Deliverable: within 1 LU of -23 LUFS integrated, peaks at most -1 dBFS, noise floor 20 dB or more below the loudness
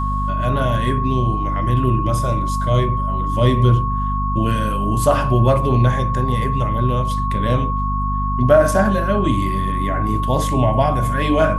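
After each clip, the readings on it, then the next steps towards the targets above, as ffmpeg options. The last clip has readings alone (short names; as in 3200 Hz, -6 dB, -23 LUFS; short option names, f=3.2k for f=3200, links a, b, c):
hum 50 Hz; harmonics up to 250 Hz; hum level -19 dBFS; steady tone 1100 Hz; tone level -22 dBFS; loudness -18.5 LUFS; peak -1.5 dBFS; loudness target -23.0 LUFS
-> -af "bandreject=f=50:t=h:w=6,bandreject=f=100:t=h:w=6,bandreject=f=150:t=h:w=6,bandreject=f=200:t=h:w=6,bandreject=f=250:t=h:w=6"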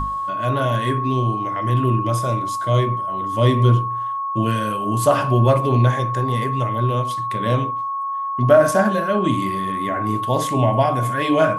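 hum none; steady tone 1100 Hz; tone level -22 dBFS
-> -af "bandreject=f=1.1k:w=30"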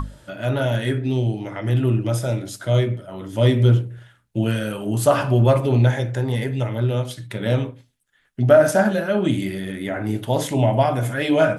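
steady tone none; loudness -20.5 LUFS; peak -3.5 dBFS; loudness target -23.0 LUFS
-> -af "volume=-2.5dB"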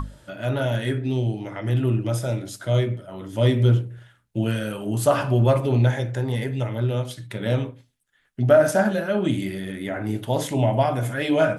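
loudness -23.0 LUFS; peak -6.0 dBFS; noise floor -65 dBFS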